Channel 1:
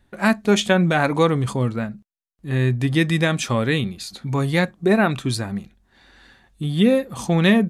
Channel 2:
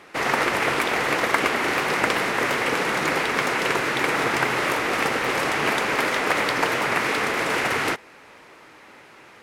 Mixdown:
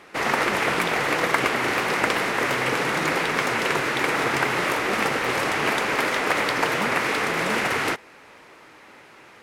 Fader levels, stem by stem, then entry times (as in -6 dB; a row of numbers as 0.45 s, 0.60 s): -19.0 dB, -0.5 dB; 0.00 s, 0.00 s